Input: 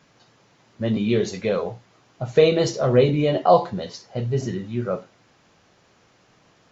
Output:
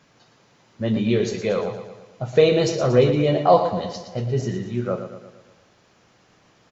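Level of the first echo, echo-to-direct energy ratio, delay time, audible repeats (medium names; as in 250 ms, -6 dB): -9.5 dB, -8.0 dB, 116 ms, 5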